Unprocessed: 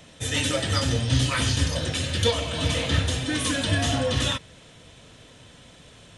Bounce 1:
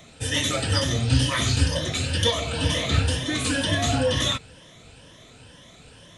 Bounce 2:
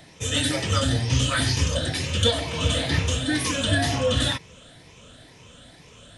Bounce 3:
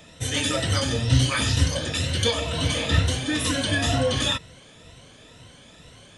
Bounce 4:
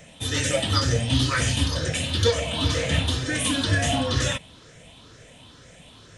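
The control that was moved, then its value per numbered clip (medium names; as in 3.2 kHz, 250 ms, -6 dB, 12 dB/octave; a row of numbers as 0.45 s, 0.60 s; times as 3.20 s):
drifting ripple filter, ripples per octave: 1.2, 0.79, 2, 0.53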